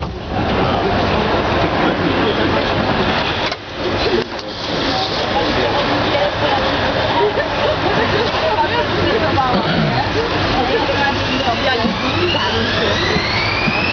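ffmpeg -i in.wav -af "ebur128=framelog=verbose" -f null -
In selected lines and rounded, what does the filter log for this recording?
Integrated loudness:
  I:         -16.1 LUFS
  Threshold: -26.0 LUFS
Loudness range:
  LRA:         1.7 LU
  Threshold: -36.1 LUFS
  LRA low:   -17.3 LUFS
  LRA high:  -15.6 LUFS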